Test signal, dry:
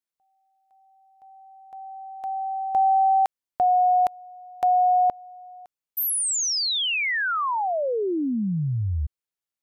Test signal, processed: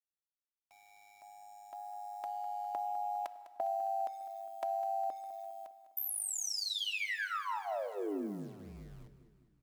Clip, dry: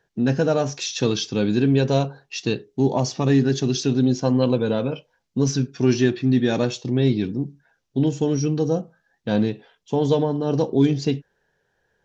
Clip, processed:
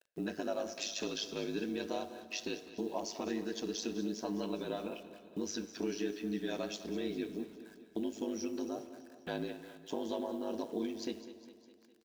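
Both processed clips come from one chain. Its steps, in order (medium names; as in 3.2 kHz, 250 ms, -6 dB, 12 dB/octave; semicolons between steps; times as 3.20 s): high-pass 360 Hz 12 dB/octave; treble shelf 4.8 kHz -3 dB; comb 3.1 ms, depth 83%; dynamic bell 890 Hz, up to -3 dB, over -30 dBFS, Q 0.95; compression 2.5:1, threshold -38 dBFS; word length cut 10-bit, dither none; ring modulator 51 Hz; feedback delay 203 ms, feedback 58%, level -14.5 dB; plate-style reverb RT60 1.9 s, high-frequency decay 0.75×, DRR 14 dB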